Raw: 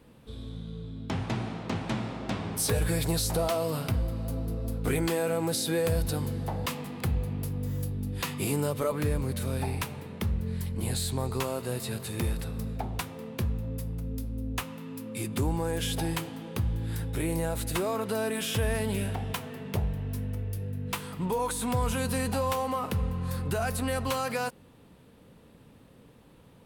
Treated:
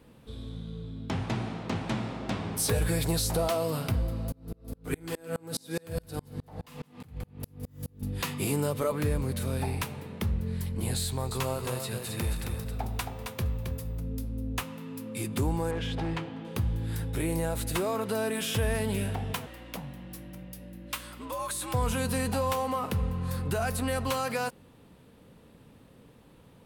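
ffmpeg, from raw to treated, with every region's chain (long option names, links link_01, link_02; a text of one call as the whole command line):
ffmpeg -i in.wav -filter_complex "[0:a]asettb=1/sr,asplit=3[link_01][link_02][link_03];[link_01]atrim=end=4.324[link_04];[link_02]atrim=start=4.32:end=8.02,asetpts=PTS-STARTPTS,afade=type=in:duration=0.004:curve=qsin,afade=type=out:start_time=3.696:duration=0.004:curve=qsin,aecho=1:1:6.7:0.31,atrim=end_sample=163170,aecho=1:1:49|166:0.224|0.237,atrim=end_sample=163170,aeval=exprs='val(0)*pow(10,-34*if(lt(mod(-4.8*n/s,1),2*abs(-4.8)/1000),1-mod(-4.8*n/s,1)/(2*abs(-4.8)/1000),(mod(-4.8*n/s,1)-2*abs(-4.8)/1000)/(1-2*abs(-4.8)/1000))/20)':channel_layout=same[link_05];[link_03]atrim=start=8.016[link_06];[link_04][link_05]acrossfade=duration=0.004:curve1=hsin:curve2=qsin[link_07];[link_07][link_06]acrossfade=duration=0.004:curve1=qsin:curve2=hsin,asettb=1/sr,asplit=3[link_08][link_09][link_10];[link_08]atrim=end=11.044[link_11];[link_09]atrim=start=11.04:end=13.99,asetpts=PTS-STARTPTS,afade=type=in:duration=0.004:curve=qsin,afade=type=out:start_time=2.946:duration=0.004:curve=qsin,equalizer=frequency=270:width_type=o:width=1.4:gain=-5,aeval=exprs='val(0)+0.001*sin(2*PI*16000*n/s)':channel_layout=same,aecho=1:1:269:0.531,atrim=end_sample=130095[link_12];[link_10]atrim=start=13.986[link_13];[link_11][link_12]acrossfade=duration=0.004:curve1=hsin:curve2=qsin[link_14];[link_14][link_13]acrossfade=duration=0.004:curve1=qsin:curve2=hsin,asettb=1/sr,asplit=3[link_15][link_16][link_17];[link_15]atrim=end=15.714[link_18];[link_16]atrim=start=15.71:end=16.45,asetpts=PTS-STARTPTS,afade=type=in:duration=0.004:curve=qsin,afade=type=out:start_time=0.736:duration=0.004:curve=qsin,lowpass=3000,volume=27dB,asoftclip=hard,volume=-27dB[link_19];[link_17]atrim=start=16.446[link_20];[link_18][link_19]acrossfade=duration=0.004:curve1=hsin:curve2=qsin[link_21];[link_21][link_20]acrossfade=duration=0.004:curve1=qsin:curve2=hsin,asettb=1/sr,asplit=3[link_22][link_23][link_24];[link_22]atrim=end=19.464[link_25];[link_23]atrim=start=19.46:end=21.74,asetpts=PTS-STARTPTS,afade=type=in:duration=0.004:curve=qsin,afade=type=out:start_time=2.276:duration=0.004:curve=qsin,afreqshift=84,equalizer=frequency=180:width=0.31:gain=-13.5,aeval=exprs='val(0)+0.00398*(sin(2*PI*60*n/s)+sin(2*PI*2*60*n/s)/2+sin(2*PI*3*60*n/s)/3+sin(2*PI*4*60*n/s)/4+sin(2*PI*5*60*n/s)/5)':channel_layout=same[link_26];[link_24]atrim=start=21.736[link_27];[link_25][link_26]acrossfade=duration=0.004:curve1=hsin:curve2=qsin[link_28];[link_28][link_27]acrossfade=duration=0.004:curve1=qsin:curve2=hsin" out.wav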